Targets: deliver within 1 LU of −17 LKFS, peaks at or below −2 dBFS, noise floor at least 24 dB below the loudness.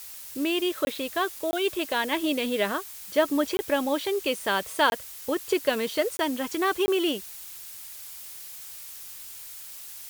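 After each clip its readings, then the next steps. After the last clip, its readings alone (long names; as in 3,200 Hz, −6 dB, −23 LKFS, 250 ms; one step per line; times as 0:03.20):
number of dropouts 6; longest dropout 20 ms; background noise floor −42 dBFS; target noise floor −51 dBFS; integrated loudness −27.0 LKFS; sample peak −9.5 dBFS; target loudness −17.0 LKFS
→ repair the gap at 0:00.85/0:01.51/0:03.57/0:04.90/0:06.17/0:06.86, 20 ms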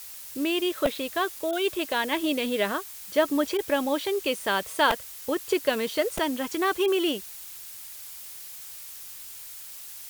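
number of dropouts 0; background noise floor −42 dBFS; target noise floor −51 dBFS
→ noise reduction from a noise print 9 dB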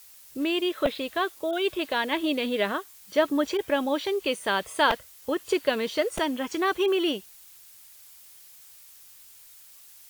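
background noise floor −51 dBFS; integrated loudness −27.0 LKFS; sample peak −9.5 dBFS; target loudness −17.0 LKFS
→ level +10 dB
brickwall limiter −2 dBFS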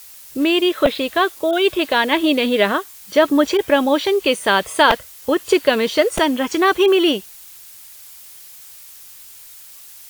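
integrated loudness −17.0 LKFS; sample peak −2.0 dBFS; background noise floor −41 dBFS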